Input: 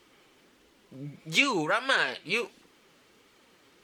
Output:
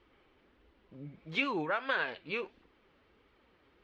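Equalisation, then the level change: distance through air 330 m; resonant low shelf 100 Hz +9 dB, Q 1.5; -4.0 dB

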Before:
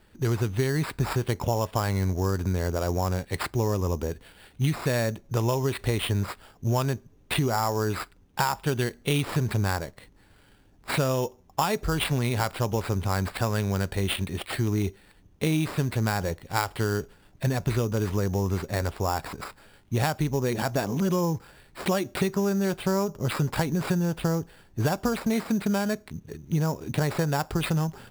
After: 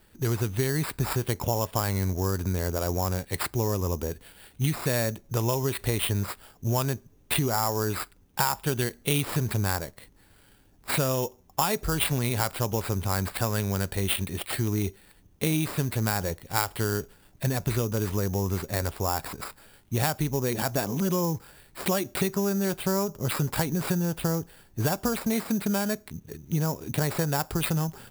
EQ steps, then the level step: treble shelf 7.8 kHz +12 dB; -1.5 dB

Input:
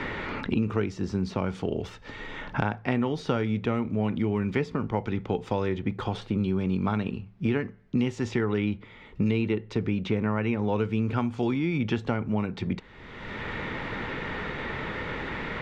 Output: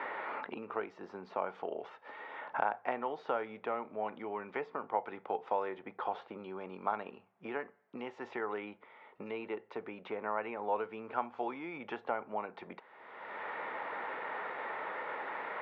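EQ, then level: ladder band-pass 920 Hz, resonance 30%; +8.5 dB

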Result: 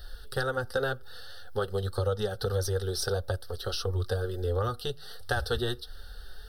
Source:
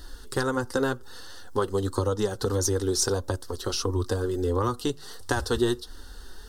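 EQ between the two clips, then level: static phaser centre 1.5 kHz, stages 8; 0.0 dB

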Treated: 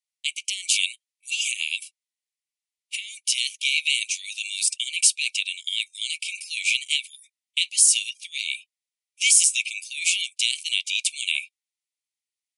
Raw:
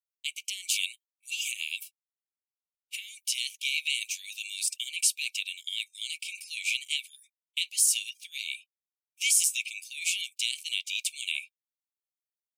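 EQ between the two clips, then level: brick-wall FIR band-pass 1.8–11 kHz; +7.0 dB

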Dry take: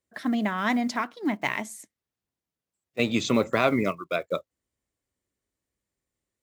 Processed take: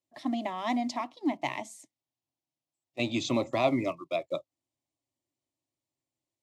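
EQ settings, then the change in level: high-pass 130 Hz 6 dB/octave; distance through air 57 m; static phaser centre 300 Hz, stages 8; 0.0 dB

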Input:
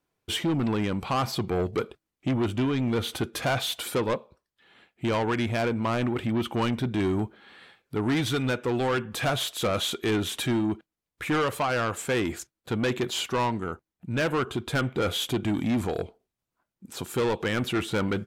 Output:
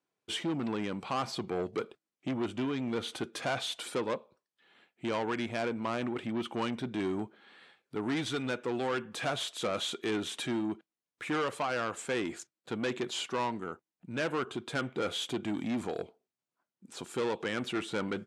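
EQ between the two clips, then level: high-pass 180 Hz 12 dB/octave; low-pass 9.7 kHz 24 dB/octave; -6.0 dB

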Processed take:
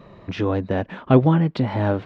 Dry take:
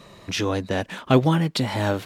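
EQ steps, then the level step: tape spacing loss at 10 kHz 39 dB; +4.0 dB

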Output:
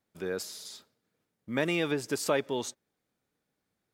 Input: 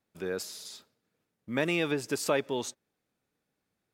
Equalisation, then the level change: band-stop 2.6 kHz, Q 23; 0.0 dB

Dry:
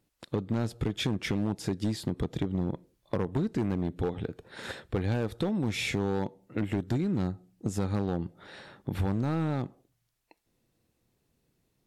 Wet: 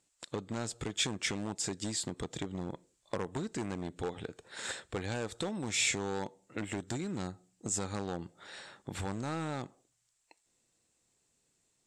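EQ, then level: resonant low-pass 7.7 kHz, resonance Q 5.5; bass shelf 420 Hz -11.5 dB; 0.0 dB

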